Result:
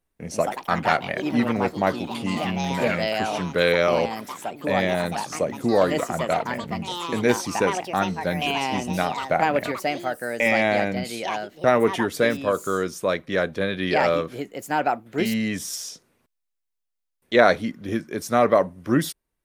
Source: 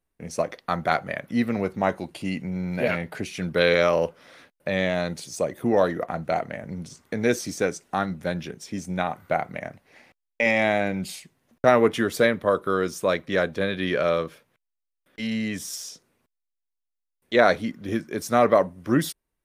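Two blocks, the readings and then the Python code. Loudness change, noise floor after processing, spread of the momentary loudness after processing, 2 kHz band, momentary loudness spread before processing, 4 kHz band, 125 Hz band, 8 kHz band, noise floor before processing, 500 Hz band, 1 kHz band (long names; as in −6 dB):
+1.5 dB, −79 dBFS, 9 LU, +2.0 dB, 14 LU, +3.5 dB, +1.0 dB, +2.5 dB, −82 dBFS, +1.0 dB, +3.5 dB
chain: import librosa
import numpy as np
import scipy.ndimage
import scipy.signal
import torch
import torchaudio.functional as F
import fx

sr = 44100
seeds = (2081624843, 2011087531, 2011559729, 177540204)

y = fx.echo_pitch(x, sr, ms=162, semitones=4, count=3, db_per_echo=-6.0)
y = fx.rider(y, sr, range_db=3, speed_s=2.0)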